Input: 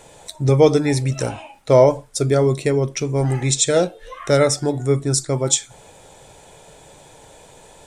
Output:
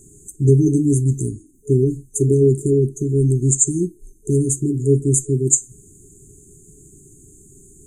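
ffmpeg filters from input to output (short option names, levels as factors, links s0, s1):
-af "afftfilt=real='re*(1-between(b*sr/4096,430,6200))':imag='im*(1-between(b*sr/4096,430,6200))':win_size=4096:overlap=0.75,volume=1.5"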